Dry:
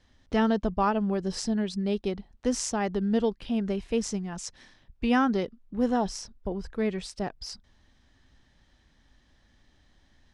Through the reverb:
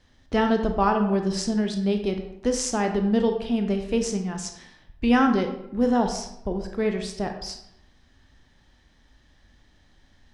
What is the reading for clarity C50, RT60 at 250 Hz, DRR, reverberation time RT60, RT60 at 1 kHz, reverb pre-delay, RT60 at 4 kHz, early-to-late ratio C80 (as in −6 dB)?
7.5 dB, 0.80 s, 5.0 dB, 0.80 s, 0.80 s, 18 ms, 0.50 s, 10.5 dB